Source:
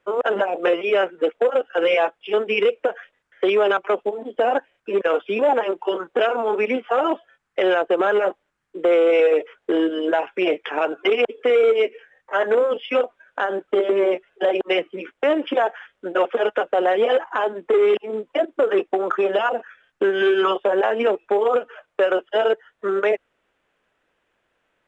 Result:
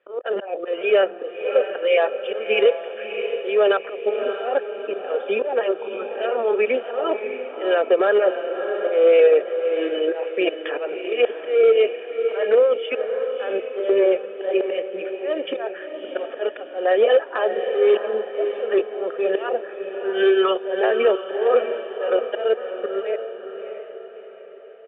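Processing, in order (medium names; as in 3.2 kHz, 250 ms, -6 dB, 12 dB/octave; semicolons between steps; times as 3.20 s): comb 1.7 ms, depth 49%; slow attack 188 ms; cabinet simulation 330–3100 Hz, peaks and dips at 380 Hz +4 dB, 700 Hz -4 dB, 1.1 kHz -10 dB, 2.1 kHz -5 dB; echo that smears into a reverb 633 ms, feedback 46%, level -8 dB; trim +1.5 dB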